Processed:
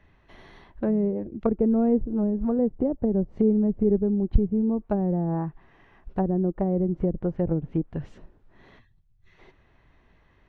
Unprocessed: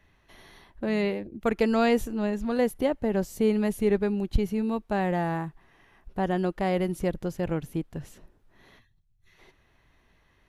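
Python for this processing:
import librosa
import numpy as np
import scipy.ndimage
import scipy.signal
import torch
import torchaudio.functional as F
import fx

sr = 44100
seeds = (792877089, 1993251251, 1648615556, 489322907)

y = fx.env_lowpass_down(x, sr, base_hz=390.0, full_db=-23.0)
y = fx.spacing_loss(y, sr, db_at_10k=21)
y = y * 10.0 ** (5.0 / 20.0)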